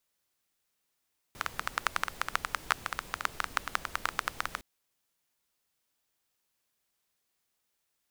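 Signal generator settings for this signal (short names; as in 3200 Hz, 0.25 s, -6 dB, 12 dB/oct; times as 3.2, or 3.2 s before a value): rain from filtered ticks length 3.26 s, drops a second 11, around 1300 Hz, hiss -12 dB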